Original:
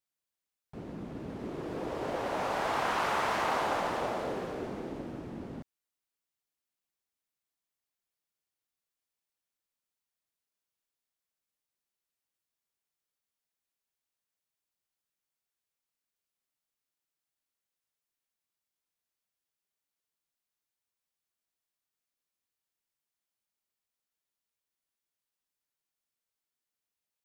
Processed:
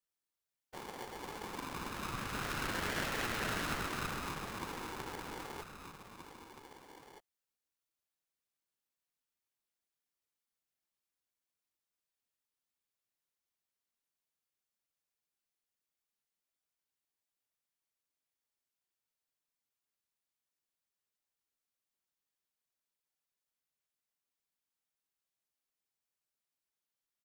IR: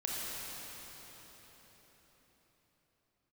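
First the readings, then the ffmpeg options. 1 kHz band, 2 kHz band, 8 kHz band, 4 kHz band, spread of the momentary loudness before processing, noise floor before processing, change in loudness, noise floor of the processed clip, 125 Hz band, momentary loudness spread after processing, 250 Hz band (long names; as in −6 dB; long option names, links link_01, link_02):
−8.5 dB, −2.0 dB, +3.0 dB, −0.5 dB, 14 LU, below −85 dBFS, −6.0 dB, below −85 dBFS, −1.0 dB, 18 LU, −5.5 dB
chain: -filter_complex "[0:a]afftfilt=real='hypot(re,im)*cos(2*PI*random(0))':imag='hypot(re,im)*sin(2*PI*random(1))':win_size=512:overlap=0.75,asplit=2[link_01][link_02];[link_02]adelay=1574,volume=-12dB,highshelf=frequency=4000:gain=-35.4[link_03];[link_01][link_03]amix=inputs=2:normalize=0,asplit=2[link_04][link_05];[link_05]acompressor=threshold=-49dB:ratio=6,volume=-1.5dB[link_06];[link_04][link_06]amix=inputs=2:normalize=0,aeval=exprs='val(0)*sgn(sin(2*PI*640*n/s))':channel_layout=same,volume=-2dB"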